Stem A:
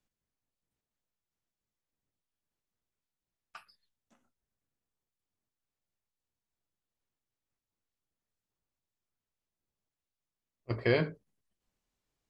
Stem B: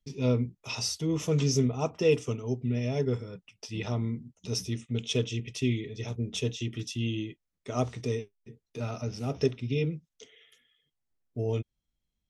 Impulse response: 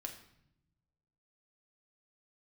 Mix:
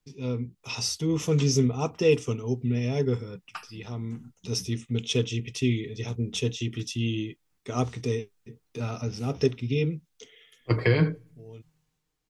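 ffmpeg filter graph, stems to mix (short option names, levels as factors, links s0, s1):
-filter_complex "[0:a]acrossover=split=180[s0][s1];[s1]acompressor=threshold=0.0251:ratio=10[s2];[s0][s2]amix=inputs=2:normalize=0,aecho=1:1:6.5:0.51,volume=1.26,asplit=3[s3][s4][s5];[s4]volume=0.112[s6];[1:a]volume=0.562[s7];[s5]apad=whole_len=542405[s8];[s7][s8]sidechaincompress=threshold=0.002:ratio=4:attack=16:release=1050[s9];[2:a]atrim=start_sample=2205[s10];[s6][s10]afir=irnorm=-1:irlink=0[s11];[s3][s9][s11]amix=inputs=3:normalize=0,equalizer=f=620:w=7.9:g=-8.5,dynaudnorm=f=110:g=11:m=2.51"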